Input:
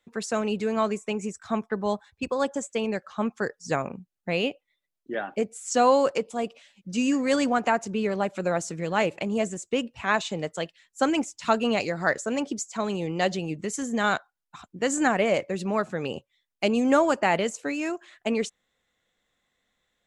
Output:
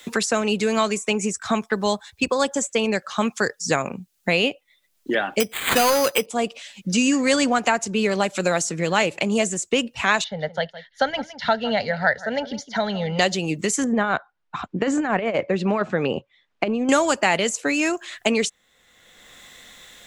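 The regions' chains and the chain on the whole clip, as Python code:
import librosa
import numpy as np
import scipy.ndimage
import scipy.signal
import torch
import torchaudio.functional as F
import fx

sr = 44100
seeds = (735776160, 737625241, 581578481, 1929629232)

y = fx.chain(x, sr, fx.peak_eq(hz=2700.0, db=9.0, octaves=1.3),
    fx.sample_hold(seeds[0], rate_hz=5500.0, jitter_pct=0),
    fx.clip_hard(threshold_db=-16.5), at=(5.4, 6.26))
y = fx.chain(y, sr, fx.lowpass(hz=2400.0, slope=12),
    fx.fixed_phaser(hz=1700.0, stages=8),
    fx.echo_single(ms=162, db=-18.0), at=(10.24, 13.19))
y = fx.chain(y, sr, fx.lowpass(hz=1400.0, slope=12),
    fx.over_compress(threshold_db=-26.0, ratio=-0.5), at=(13.84, 16.89))
y = fx.high_shelf(y, sr, hz=2100.0, db=9.5)
y = fx.band_squash(y, sr, depth_pct=70)
y = F.gain(torch.from_numpy(y), 3.5).numpy()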